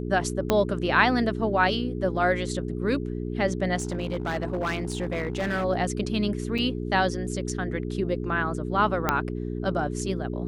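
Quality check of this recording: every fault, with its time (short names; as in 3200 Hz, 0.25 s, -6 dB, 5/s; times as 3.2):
hum 60 Hz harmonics 7 -31 dBFS
0.5 pop -7 dBFS
3.76–5.65 clipped -23.5 dBFS
6.58–6.59 gap 5.3 ms
9.09 pop -7 dBFS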